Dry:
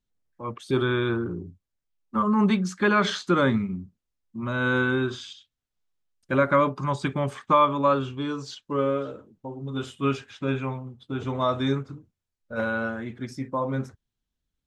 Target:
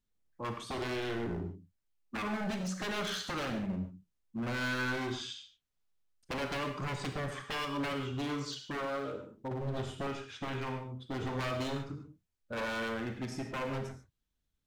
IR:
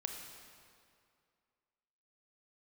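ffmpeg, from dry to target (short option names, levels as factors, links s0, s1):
-filter_complex "[0:a]asettb=1/sr,asplit=3[s0][s1][s2];[s0]atrim=end=9.514[s3];[s1]atrim=start=9.51:end=10.07,asetpts=PTS-STARTPTS,afade=t=in:d=0.004:c=qsin,afade=t=out:st=0.556:d=0.004:c=qsin,lowshelf=f=320:g=11.5[s4];[s2]atrim=start=10.066[s5];[s3][s4]acrossfade=d=0.004:c1=hsin:c2=qsin[s6];[s6][s5]acrossfade=d=0.004:c1=qsin:c2=hsin,acompressor=threshold=0.0447:ratio=5,aeval=exprs='0.0355*(abs(mod(val(0)/0.0355+3,4)-2)-1)':c=same[s7];[1:a]atrim=start_sample=2205,afade=t=out:st=0.2:d=0.01,atrim=end_sample=9261[s8];[s7][s8]afir=irnorm=-1:irlink=0"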